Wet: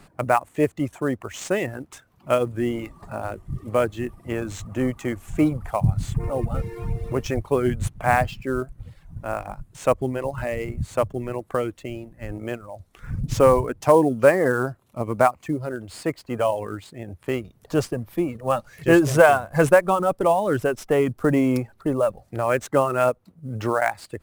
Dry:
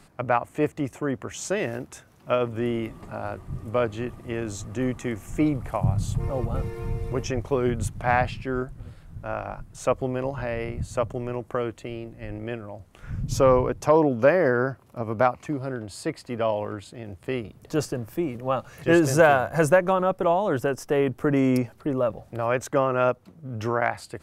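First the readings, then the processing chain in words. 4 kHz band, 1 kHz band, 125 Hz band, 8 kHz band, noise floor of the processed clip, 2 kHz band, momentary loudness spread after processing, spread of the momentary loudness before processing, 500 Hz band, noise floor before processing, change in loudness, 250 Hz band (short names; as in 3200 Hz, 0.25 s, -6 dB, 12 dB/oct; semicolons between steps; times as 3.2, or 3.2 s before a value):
+1.0 dB, +2.5 dB, +1.5 dB, +0.5 dB, -59 dBFS, +2.0 dB, 16 LU, 15 LU, +2.5 dB, -54 dBFS, +2.5 dB, +2.0 dB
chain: reverb removal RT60 0.84 s; in parallel at -6 dB: sample-rate reducer 9700 Hz, jitter 20%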